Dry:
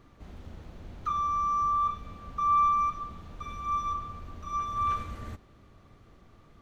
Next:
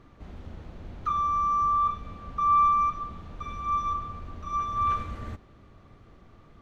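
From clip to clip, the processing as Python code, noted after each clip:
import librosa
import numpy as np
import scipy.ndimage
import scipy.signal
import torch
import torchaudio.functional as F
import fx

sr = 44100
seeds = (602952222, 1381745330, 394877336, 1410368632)

y = fx.lowpass(x, sr, hz=3900.0, slope=6)
y = F.gain(torch.from_numpy(y), 3.0).numpy()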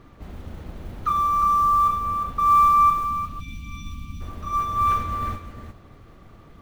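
y = fx.spec_box(x, sr, start_s=3.05, length_s=1.16, low_hz=310.0, high_hz=2200.0, gain_db=-25)
y = fx.mod_noise(y, sr, seeds[0], snr_db=29)
y = y + 10.0 ** (-7.5 / 20.0) * np.pad(y, (int(355 * sr / 1000.0), 0))[:len(y)]
y = F.gain(torch.from_numpy(y), 5.0).numpy()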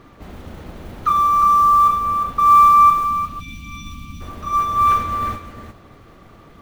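y = fx.low_shelf(x, sr, hz=140.0, db=-8.0)
y = F.gain(torch.from_numpy(y), 6.0).numpy()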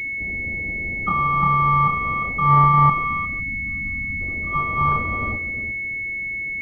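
y = fx.spec_topn(x, sr, count=64)
y = fx.env_lowpass(y, sr, base_hz=360.0, full_db=-9.0)
y = fx.pwm(y, sr, carrier_hz=2200.0)
y = F.gain(torch.from_numpy(y), 1.5).numpy()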